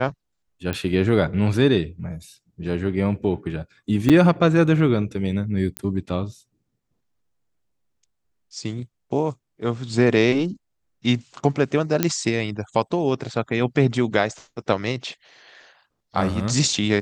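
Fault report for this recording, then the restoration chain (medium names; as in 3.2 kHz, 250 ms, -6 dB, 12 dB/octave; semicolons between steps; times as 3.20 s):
0.73 s: pop -12 dBFS
4.09–4.10 s: dropout 6.8 ms
5.77 s: pop -10 dBFS
12.03 s: pop -3 dBFS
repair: de-click; interpolate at 4.09 s, 6.8 ms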